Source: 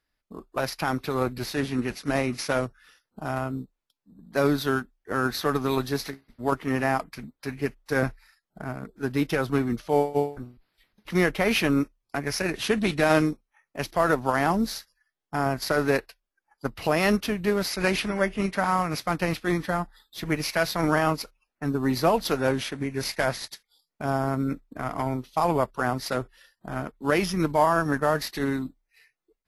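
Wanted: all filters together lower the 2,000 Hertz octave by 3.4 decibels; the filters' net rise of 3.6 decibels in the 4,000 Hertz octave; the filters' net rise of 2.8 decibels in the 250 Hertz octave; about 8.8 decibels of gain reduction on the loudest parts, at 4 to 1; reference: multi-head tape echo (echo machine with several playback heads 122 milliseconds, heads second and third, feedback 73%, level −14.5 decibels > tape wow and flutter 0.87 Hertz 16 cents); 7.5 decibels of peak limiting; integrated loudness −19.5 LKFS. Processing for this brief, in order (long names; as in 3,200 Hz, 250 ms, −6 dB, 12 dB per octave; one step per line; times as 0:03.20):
parametric band 250 Hz +3.5 dB
parametric band 2,000 Hz −6 dB
parametric band 4,000 Hz +6 dB
downward compressor 4 to 1, threshold −27 dBFS
brickwall limiter −21 dBFS
echo machine with several playback heads 122 ms, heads second and third, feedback 73%, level −14.5 dB
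tape wow and flutter 0.87 Hz 16 cents
level +13.5 dB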